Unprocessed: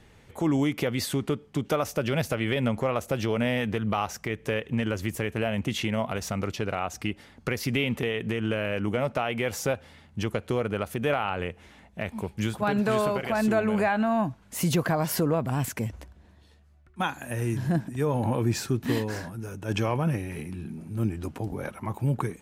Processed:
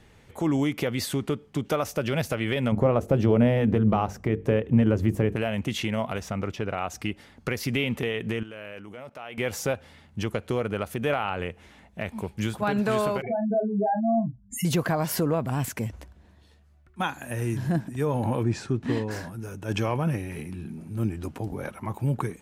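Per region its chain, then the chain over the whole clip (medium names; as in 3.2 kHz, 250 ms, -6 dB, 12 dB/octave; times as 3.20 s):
2.72–5.36 s: tilt shelf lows +9 dB, about 1.1 kHz + hum notches 50/100/150/200/250/300/350/400/450 Hz
6.21–6.78 s: treble shelf 4.6 kHz -9.5 dB + band-stop 4.3 kHz, Q 10
8.43–9.38 s: level held to a coarse grid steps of 19 dB + bass shelf 270 Hz -8.5 dB
13.22–14.65 s: spectral contrast enhancement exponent 4 + doubling 35 ms -8 dB + tape noise reduction on one side only encoder only
18.43–19.11 s: low-pass 9.4 kHz 24 dB/octave + treble shelf 3.2 kHz -9.5 dB
whole clip: none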